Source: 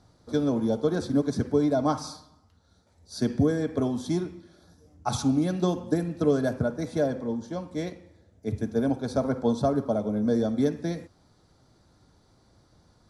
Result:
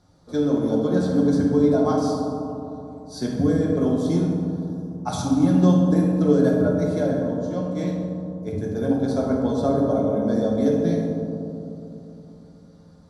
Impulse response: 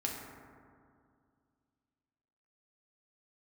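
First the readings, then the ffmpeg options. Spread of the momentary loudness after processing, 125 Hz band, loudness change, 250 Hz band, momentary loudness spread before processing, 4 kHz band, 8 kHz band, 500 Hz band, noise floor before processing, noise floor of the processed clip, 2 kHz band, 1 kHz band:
13 LU, +7.0 dB, +5.5 dB, +6.5 dB, 10 LU, +1.0 dB, +1.0 dB, +5.0 dB, -63 dBFS, -48 dBFS, +1.5 dB, +3.5 dB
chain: -filter_complex "[1:a]atrim=start_sample=2205,asetrate=29106,aresample=44100[a];[0:a][a]afir=irnorm=-1:irlink=0,volume=-2.5dB"

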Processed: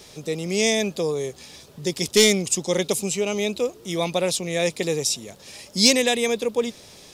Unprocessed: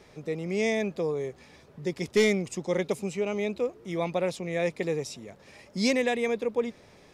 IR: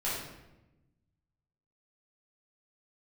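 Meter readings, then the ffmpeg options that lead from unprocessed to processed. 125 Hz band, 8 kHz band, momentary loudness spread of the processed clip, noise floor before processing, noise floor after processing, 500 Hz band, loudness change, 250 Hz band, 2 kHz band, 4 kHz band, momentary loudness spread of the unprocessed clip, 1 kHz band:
+4.5 dB, +18.0 dB, 14 LU, -56 dBFS, -48 dBFS, +4.5 dB, +7.0 dB, +4.5 dB, +5.5 dB, +15.0 dB, 11 LU, +4.5 dB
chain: -af "aexciter=amount=3.1:drive=7.2:freq=2.9k,volume=4.5dB"

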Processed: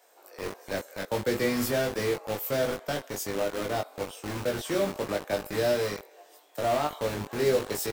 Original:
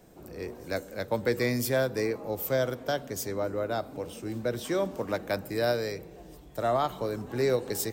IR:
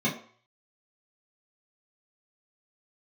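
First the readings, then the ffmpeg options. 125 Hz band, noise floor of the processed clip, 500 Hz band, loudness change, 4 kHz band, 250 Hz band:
-1.5 dB, -57 dBFS, +0.5 dB, +0.5 dB, +2.5 dB, +0.5 dB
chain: -filter_complex "[0:a]bandreject=f=50:t=h:w=6,bandreject=f=100:t=h:w=6,bandreject=f=150:t=h:w=6,bandreject=f=200:t=h:w=6,bandreject=f=250:t=h:w=6,bandreject=f=300:t=h:w=6,bandreject=f=350:t=h:w=6,bandreject=f=400:t=h:w=6,acrossover=split=530[a][b];[a]acrusher=bits=5:mix=0:aa=0.000001[c];[b]asoftclip=type=tanh:threshold=-28.5dB[d];[c][d]amix=inputs=2:normalize=0,asplit=2[e][f];[f]adelay=20,volume=-2.5dB[g];[e][g]amix=inputs=2:normalize=0"

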